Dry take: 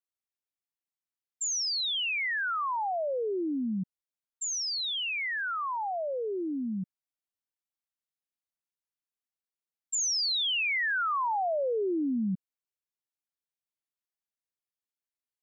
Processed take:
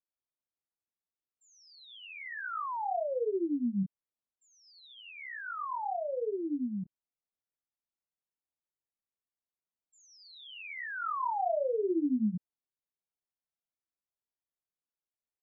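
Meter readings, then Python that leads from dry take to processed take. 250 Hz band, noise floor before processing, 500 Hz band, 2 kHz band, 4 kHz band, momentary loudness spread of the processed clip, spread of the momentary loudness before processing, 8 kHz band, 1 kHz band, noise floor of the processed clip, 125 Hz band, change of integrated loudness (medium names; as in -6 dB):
-0.5 dB, under -85 dBFS, -1.5 dB, -11.0 dB, -22.0 dB, 17 LU, 8 LU, no reading, -3.5 dB, under -85 dBFS, -1.0 dB, -4.5 dB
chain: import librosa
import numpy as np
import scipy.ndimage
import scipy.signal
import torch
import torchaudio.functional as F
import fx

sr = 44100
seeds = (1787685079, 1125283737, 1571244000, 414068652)

y = fx.chorus_voices(x, sr, voices=2, hz=0.61, base_ms=25, depth_ms=1.7, mix_pct=40)
y = scipy.signal.sosfilt(scipy.signal.butter(2, 1100.0, 'lowpass', fs=sr, output='sos'), y)
y = F.gain(torch.from_numpy(y), 1.5).numpy()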